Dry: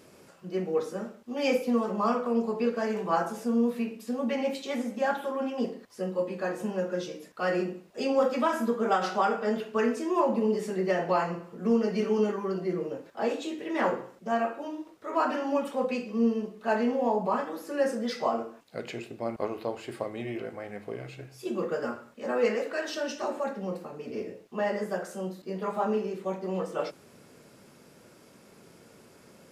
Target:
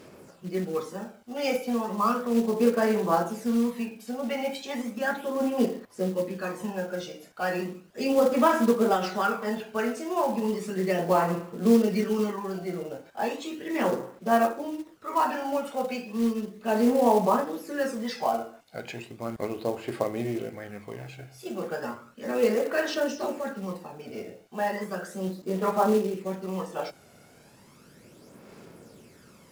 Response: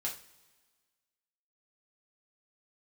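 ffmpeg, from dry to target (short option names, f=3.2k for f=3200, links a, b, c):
-af "aphaser=in_gain=1:out_gain=1:delay=1.4:decay=0.5:speed=0.35:type=sinusoidal,acrusher=bits=5:mode=log:mix=0:aa=0.000001"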